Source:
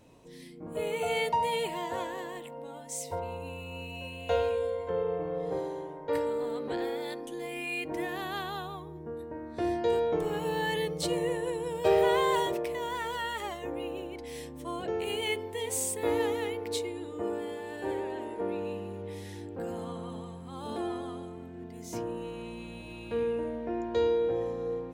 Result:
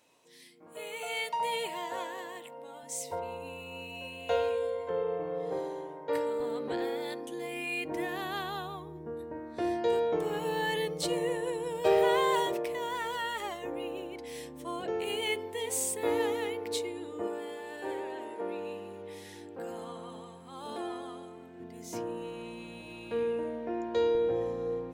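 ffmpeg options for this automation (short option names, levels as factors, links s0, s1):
-af "asetnsamples=n=441:p=0,asendcmd='1.4 highpass f 580;2.83 highpass f 260;6.4 highpass f 95;9.4 highpass f 200;17.27 highpass f 460;21.6 highpass f 200;24.15 highpass f 51',highpass=f=1500:p=1"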